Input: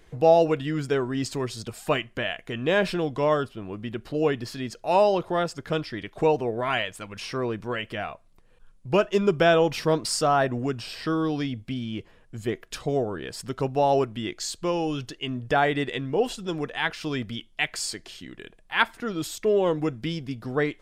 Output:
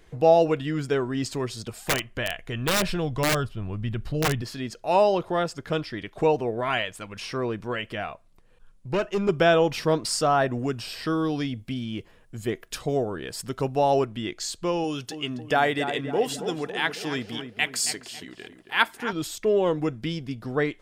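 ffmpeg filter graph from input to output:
-filter_complex "[0:a]asettb=1/sr,asplit=3[s0][s1][s2];[s0]atrim=end=1.694[s3];[s1]atrim=start=1.69:end=4.42,asetpts=PTS-STARTPTS,afade=t=in:d=0.004:c=qsin,afade=t=out:st=2.726:d=0.004:c=qsin,asubboost=boost=10:cutoff=120,aeval=exprs='(mod(6.68*val(0)+1,2)-1)/6.68':c=same[s4];[s2]atrim=start=4.416[s5];[s3][s4]acrossfade=d=0.004:c1=hsin:c2=qsin[s6];[s6][s5]acrossfade=d=0.004:c1=qsin:c2=hsin,asettb=1/sr,asplit=3[s7][s8][s9];[s7]atrim=end=8.884[s10];[s8]atrim=start=8.88:end=9.29,asetpts=PTS-STARTPTS,afade=t=in:d=0.004:c=qsin,afade=t=out:st=0.406:d=0.004:c=qsin,aeval=exprs='(tanh(8.91*val(0)+0.25)-tanh(0.25))/8.91':c=same,bandreject=f=3400:w=8.5[s11];[s9]atrim=start=9.286[s12];[s10][s11]acrossfade=d=0.004:c1=hsin:c2=qsin[s13];[s13][s12]acrossfade=d=0.004:c1=qsin:c2=hsin,asettb=1/sr,asplit=3[s14][s15][s16];[s14]atrim=end=10.514[s17];[s15]atrim=start=10.51:end=14.01,asetpts=PTS-STARTPTS,afade=t=in:d=0.004:c=qsin,afade=t=out:st=3.496:d=0.004:c=qsin,deesser=0.25,highshelf=f=9600:g=9[s18];[s16]atrim=start=14.006[s19];[s17][s18]acrossfade=d=0.004:c1=hsin:c2=qsin[s20];[s20][s19]acrossfade=d=0.004:c1=qsin:c2=hsin,asettb=1/sr,asplit=3[s21][s22][s23];[s21]atrim=end=14.844[s24];[s22]atrim=start=14.84:end=19.13,asetpts=PTS-STARTPTS,afade=t=in:d=0.004:c=qsin,afade=t=out:st=4.286:d=0.004:c=qsin,highpass=f=170:p=1,highshelf=f=6600:g=9.5,asplit=2[s25][s26];[s26]adelay=274,lowpass=f=1500:p=1,volume=0.398,asplit=2[s27][s28];[s28]adelay=274,lowpass=f=1500:p=1,volume=0.51,asplit=2[s29][s30];[s30]adelay=274,lowpass=f=1500:p=1,volume=0.51,asplit=2[s31][s32];[s32]adelay=274,lowpass=f=1500:p=1,volume=0.51,asplit=2[s33][s34];[s34]adelay=274,lowpass=f=1500:p=1,volume=0.51,asplit=2[s35][s36];[s36]adelay=274,lowpass=f=1500:p=1,volume=0.51[s37];[s25][s27][s29][s31][s33][s35][s37]amix=inputs=7:normalize=0,atrim=end_sample=189189[s38];[s23]atrim=start=19.126[s39];[s24][s38]acrossfade=d=0.004:c1=hsin:c2=qsin[s40];[s40][s39]acrossfade=d=0.004:c1=qsin:c2=hsin"

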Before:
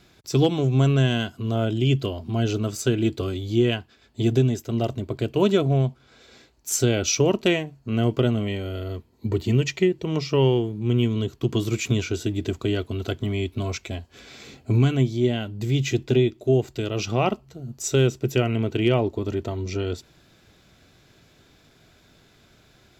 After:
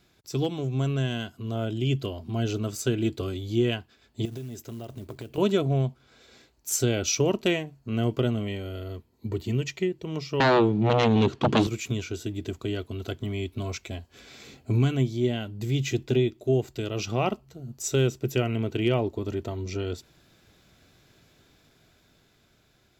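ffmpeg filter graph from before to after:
-filter_complex "[0:a]asettb=1/sr,asplit=3[s0][s1][s2];[s0]atrim=end=4.254[s3];[s1]atrim=start=4.25:end=5.38,asetpts=PTS-STARTPTS,afade=t=in:d=0.004:c=qsin,afade=t=out:st=1.126:d=0.004:c=qsin,acompressor=threshold=0.0316:ratio=6:attack=3.2:release=140:knee=1:detection=peak,acrusher=bits=6:mode=log:mix=0:aa=0.000001[s4];[s2]atrim=start=5.376[s5];[s3][s4]acrossfade=d=0.004:c1=hsin:c2=qsin[s6];[s6][s5]acrossfade=d=0.004:c1=qsin:c2=hsin,asettb=1/sr,asplit=3[s7][s8][s9];[s7]atrim=end=10.404[s10];[s8]atrim=start=10.4:end=11.67,asetpts=PTS-STARTPTS,afade=t=in:d=0.004:c=qsin,afade=t=out:st=1.266:d=0.004:c=qsin,aeval=exprs='0.398*sin(PI/2*4.47*val(0)/0.398)':c=same,highpass=130,lowpass=4000[s11];[s9]atrim=start=11.666[s12];[s10][s11]acrossfade=d=0.004:c1=hsin:c2=qsin[s13];[s13][s12]acrossfade=d=0.004:c1=qsin:c2=hsin,dynaudnorm=f=380:g=9:m=1.78,highshelf=f=12000:g=7,volume=0.398"

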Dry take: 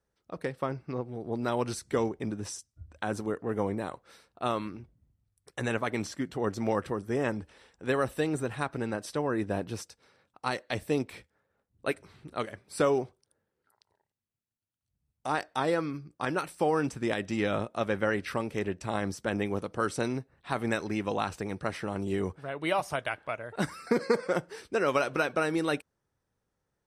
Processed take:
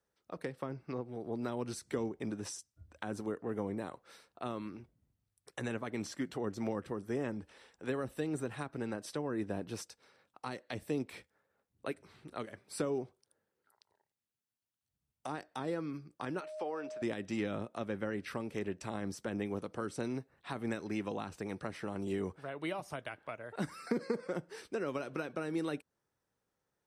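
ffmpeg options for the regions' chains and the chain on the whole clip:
-filter_complex "[0:a]asettb=1/sr,asplit=3[s0][s1][s2];[s0]atrim=end=16.404[s3];[s1]atrim=start=16.4:end=17.02,asetpts=PTS-STARTPTS,afade=t=in:d=0.004:c=qsin,afade=t=out:st=0.616:d=0.004:c=qsin,highpass=470,lowpass=5000,aeval=exprs='val(0)+0.0178*sin(2*PI*620*n/s)':c=same[s4];[s2]atrim=start=17.016[s5];[s3][s4]acrossfade=d=0.004:c1=hsin:c2=qsin[s6];[s6][s5]acrossfade=d=0.004:c1=qsin:c2=hsin,lowshelf=f=130:g=-11,acrossover=split=350[s7][s8];[s8]acompressor=threshold=0.0112:ratio=5[s9];[s7][s9]amix=inputs=2:normalize=0,volume=0.841"

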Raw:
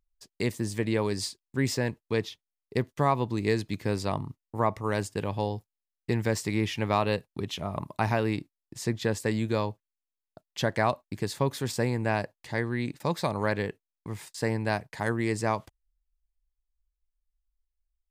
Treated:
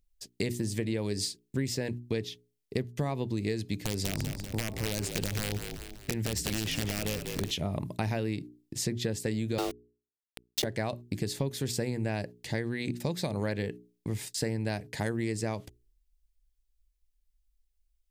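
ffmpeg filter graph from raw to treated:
-filter_complex "[0:a]asettb=1/sr,asplit=3[s0][s1][s2];[s0]atrim=end=3.764[s3];[s1]atrim=start=3.76:end=7.51,asetpts=PTS-STARTPTS,afade=t=in:d=0.004:c=qsin,afade=t=out:st=3.746:d=0.004:c=qsin,acompressor=threshold=0.0447:ratio=12:attack=3.2:release=140:knee=1:detection=peak,aeval=exprs='(mod(15.8*val(0)+1,2)-1)/15.8':c=same,asplit=6[s4][s5][s6][s7][s8][s9];[s5]adelay=194,afreqshift=-45,volume=0.355[s10];[s6]adelay=388,afreqshift=-90,volume=0.164[s11];[s7]adelay=582,afreqshift=-135,volume=0.075[s12];[s8]adelay=776,afreqshift=-180,volume=0.0347[s13];[s9]adelay=970,afreqshift=-225,volume=0.0158[s14];[s4][s10][s11][s12][s13][s14]amix=inputs=6:normalize=0,atrim=end_sample=165375[s15];[s2]atrim=start=7.506[s16];[s3][s15]acrossfade=d=0.004:c1=hsin:c2=qsin[s17];[s17][s16]acrossfade=d=0.004:c1=qsin:c2=hsin,asettb=1/sr,asplit=3[s18][s19][s20];[s18]atrim=end=9.584[s21];[s19]atrim=start=9.58:end=10.64,asetpts=PTS-STARTPTS,afade=t=in:d=0.004:c=qsin,afade=t=out:st=1.056:d=0.004:c=qsin,acontrast=80,afreqshift=230,aeval=exprs='val(0)*gte(abs(val(0)),0.0473)':c=same[s22];[s20]atrim=start=10.636[s23];[s21][s22]acrossfade=d=0.004:c1=hsin:c2=qsin[s24];[s24][s23]acrossfade=d=0.004:c1=qsin:c2=hsin,equalizer=f=1100:t=o:w=1.2:g=-13,bandreject=f=60:t=h:w=6,bandreject=f=120:t=h:w=6,bandreject=f=180:t=h:w=6,bandreject=f=240:t=h:w=6,bandreject=f=300:t=h:w=6,bandreject=f=360:t=h:w=6,bandreject=f=420:t=h:w=6,acompressor=threshold=0.0178:ratio=6,volume=2.24"

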